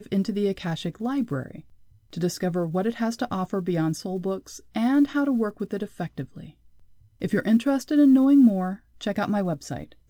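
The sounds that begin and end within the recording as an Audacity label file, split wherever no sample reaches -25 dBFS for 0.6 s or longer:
2.170000	6.220000	sound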